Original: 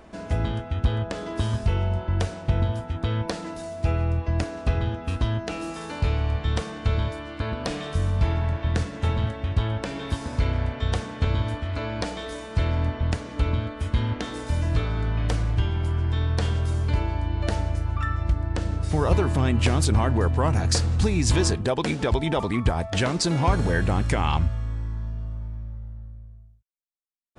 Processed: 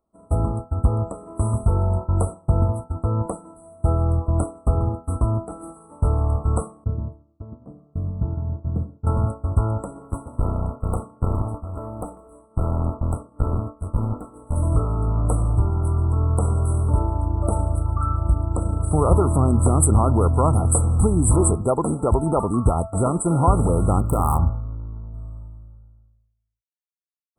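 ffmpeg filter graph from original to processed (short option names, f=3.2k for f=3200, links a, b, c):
-filter_complex "[0:a]asettb=1/sr,asplit=3[a][b][c];[a]atrim=end=6.844[d];[b]atrim=start=6.84:end=9.07,asetpts=PTS-STARTPTS,afade=t=in:d=0.004:c=qsin,afade=t=out:st=2.226:d=0.004:c=qsin,bandpass=f=160:t=q:w=1,aecho=1:1:135|270|405:0.237|0.0735|0.0228,atrim=end_sample=98343[e];[c]atrim=start=9.066[f];[d][e]acrossfade=d=0.004:c1=hsin:c2=qsin[g];[g][f]acrossfade=d=0.004:c1=qsin:c2=hsin,asettb=1/sr,asplit=3[h][i][j];[h]atrim=end=10.024[k];[i]atrim=start=10.02:end=14.56,asetpts=PTS-STARTPTS,afade=t=in:d=0.004:c=qsin,afade=t=out:st=4.536:d=0.004:c=qsin,aeval=exprs='clip(val(0),-1,0.0335)':c=same,highshelf=f=6.2k:g=-9[l];[j]atrim=start=14.556[m];[k][l]acrossfade=d=0.004:c1=hsin:c2=qsin[n];[n][m]acrossfade=d=0.004:c1=qsin:c2=hsin,asettb=1/sr,asplit=3[o][p][q];[o]atrim=end=24.004[r];[p]atrim=start=24:end=25.14,asetpts=PTS-STARTPTS,afade=t=in:d=0.004:c=qsin,afade=t=out:st=1.136:d=0.004:c=qsin,bandreject=f=51.5:t=h:w=4,bandreject=f=103:t=h:w=4,bandreject=f=154.5:t=h:w=4,bandreject=f=206:t=h:w=4,bandreject=f=257.5:t=h:w=4,bandreject=f=309:t=h:w=4,bandreject=f=360.5:t=h:w=4,bandreject=f=412:t=h:w=4,bandreject=f=463.5:t=h:w=4,bandreject=f=515:t=h:w=4,bandreject=f=566.5:t=h:w=4,bandreject=f=618:t=h:w=4,bandreject=f=669.5:t=h:w=4,bandreject=f=721:t=h:w=4,bandreject=f=772.5:t=h:w=4,bandreject=f=824:t=h:w=4,bandreject=f=875.5:t=h:w=4,bandreject=f=927:t=h:w=4,bandreject=f=978.5:t=h:w=4,bandreject=f=1.03k:t=h:w=4,bandreject=f=1.0815k:t=h:w=4,bandreject=f=1.133k:t=h:w=4,bandreject=f=1.1845k:t=h:w=4,aeval=exprs='sgn(val(0))*max(abs(val(0))-0.00211,0)':c=same,adynamicsmooth=sensitivity=7:basefreq=520[s];[q]atrim=start=25.136[t];[r][s]acrossfade=d=0.004:c1=hsin:c2=qsin[u];[u][t]acrossfade=d=0.004:c1=qsin:c2=hsin,afftfilt=real='re*(1-between(b*sr/4096,1400,7700))':imag='im*(1-between(b*sr/4096,1400,7700))':win_size=4096:overlap=0.75,agate=range=-33dB:threshold=-24dB:ratio=3:detection=peak,highshelf=f=3.2k:g=9.5,volume=4dB"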